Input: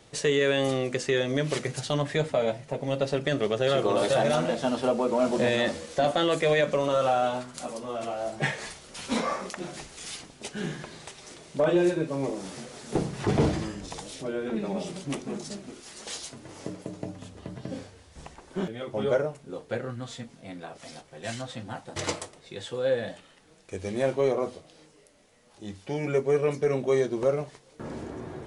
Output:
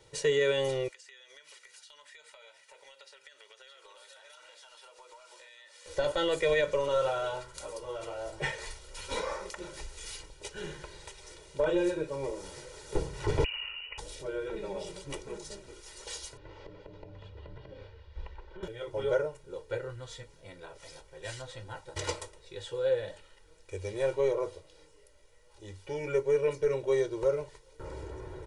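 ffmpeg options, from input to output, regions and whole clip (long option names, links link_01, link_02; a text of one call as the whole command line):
ffmpeg -i in.wav -filter_complex "[0:a]asettb=1/sr,asplit=3[link_01][link_02][link_03];[link_01]atrim=end=0.884[link_04];[link_02]atrim=start=0.88:end=5.86,asetpts=PTS-STARTPTS,afade=type=in:duration=0.004:curve=qsin,afade=type=out:start_time=4.976:duration=0.004:curve=qsin,highpass=1500,acompressor=threshold=-45dB:ratio=20:attack=3.2:release=140:knee=1:detection=peak[link_05];[link_03]atrim=start=5.856[link_06];[link_04][link_05]acrossfade=duration=0.004:curve1=hsin:curve2=qsin[link_07];[link_07][link_06]acrossfade=duration=0.004:curve1=qsin:curve2=hsin,asettb=1/sr,asplit=3[link_08][link_09][link_10];[link_08]atrim=end=13.444[link_11];[link_09]atrim=start=13.44:end=13.98,asetpts=PTS-STARTPTS,afade=type=in:duration=0.004:curve=qsin,afade=type=out:start_time=0.536:duration=0.004:curve=qsin,lowpass=frequency=2600:width_type=q:width=0.5098,lowpass=frequency=2600:width_type=q:width=0.6013,lowpass=frequency=2600:width_type=q:width=0.9,lowpass=frequency=2600:width_type=q:width=2.563,afreqshift=-3000,acompressor=threshold=-30dB:ratio=5:attack=3.2:release=140:knee=1:detection=peak[link_12];[link_10]atrim=start=13.976[link_13];[link_11][link_12]acrossfade=duration=0.004:curve1=hsin:curve2=qsin[link_14];[link_14][link_13]acrossfade=duration=0.004:curve1=qsin:curve2=hsin,asettb=1/sr,asplit=3[link_15][link_16][link_17];[link_15]atrim=end=16.374[link_18];[link_16]atrim=start=16.37:end=18.63,asetpts=PTS-STARTPTS,afade=type=in:duration=0.004:curve=qsin,afade=type=out:start_time=2.256:duration=0.004:curve=qsin,lowpass=frequency=3900:width=0.5412,lowpass=frequency=3900:width=1.3066,acompressor=threshold=-37dB:ratio=6:attack=3.2:release=140:knee=1:detection=peak[link_19];[link_17]atrim=start=18.626[link_20];[link_18][link_19]acrossfade=duration=0.004:curve1=hsin:curve2=qsin[link_21];[link_21][link_20]acrossfade=duration=0.004:curve1=qsin:curve2=hsin,asubboost=boost=7:cutoff=54,aecho=1:1:2.1:0.94,volume=-7dB" out.wav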